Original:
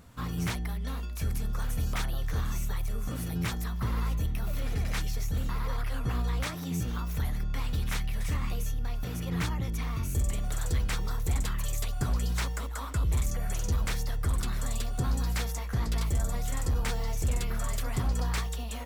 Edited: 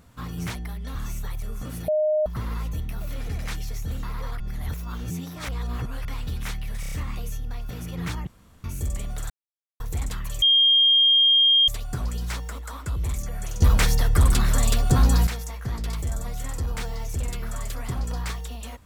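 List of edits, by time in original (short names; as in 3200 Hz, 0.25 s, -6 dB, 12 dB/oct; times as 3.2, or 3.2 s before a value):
0.95–2.41 cut
3.34–3.72 bleep 614 Hz -18.5 dBFS
5.86–7.51 reverse
8.26 stutter 0.03 s, 5 plays
9.61–9.98 room tone
10.64–11.14 mute
11.76 add tone 3220 Hz -14 dBFS 1.26 s
13.7–15.35 gain +11 dB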